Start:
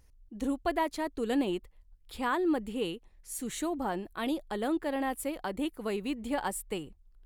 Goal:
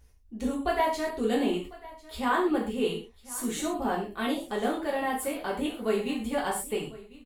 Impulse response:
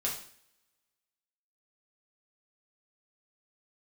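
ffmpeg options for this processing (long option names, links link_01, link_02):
-filter_complex "[0:a]aecho=1:1:1049:0.106[link_01];[1:a]atrim=start_sample=2205,atrim=end_sample=6174[link_02];[link_01][link_02]afir=irnorm=-1:irlink=0"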